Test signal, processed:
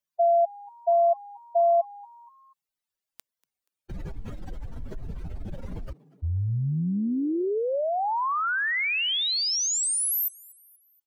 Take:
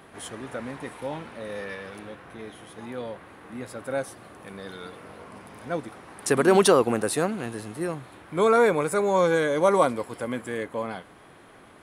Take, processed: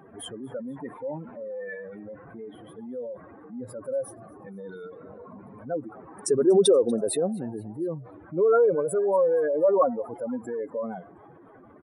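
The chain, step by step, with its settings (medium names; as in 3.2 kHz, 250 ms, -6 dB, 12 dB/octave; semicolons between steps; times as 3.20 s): spectral contrast enhancement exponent 2.7; on a send: frequency-shifting echo 239 ms, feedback 47%, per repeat +130 Hz, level -24 dB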